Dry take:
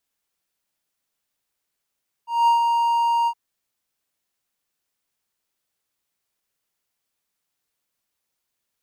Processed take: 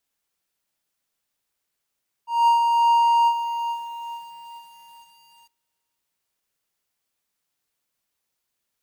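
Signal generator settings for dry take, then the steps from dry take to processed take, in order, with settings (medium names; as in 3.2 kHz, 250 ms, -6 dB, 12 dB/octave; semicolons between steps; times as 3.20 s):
ADSR triangle 935 Hz, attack 202 ms, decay 122 ms, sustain -4.5 dB, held 1.00 s, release 66 ms -10.5 dBFS
thinning echo 447 ms, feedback 41%, high-pass 910 Hz, level -15.5 dB; bit-crushed delay 431 ms, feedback 55%, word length 7-bit, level -12.5 dB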